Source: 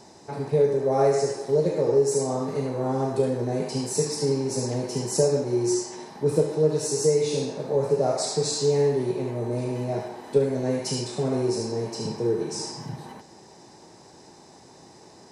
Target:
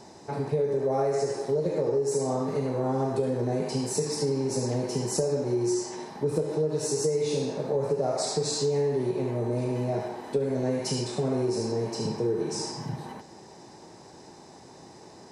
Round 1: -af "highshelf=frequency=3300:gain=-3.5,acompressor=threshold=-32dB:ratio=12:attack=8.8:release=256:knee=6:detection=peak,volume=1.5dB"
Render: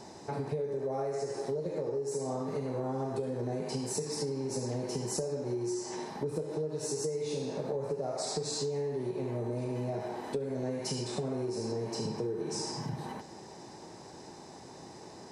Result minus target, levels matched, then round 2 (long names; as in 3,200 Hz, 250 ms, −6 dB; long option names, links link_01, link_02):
downward compressor: peak gain reduction +8.5 dB
-af "highshelf=frequency=3300:gain=-3.5,acompressor=threshold=-23dB:ratio=12:attack=8.8:release=256:knee=6:detection=peak,volume=1.5dB"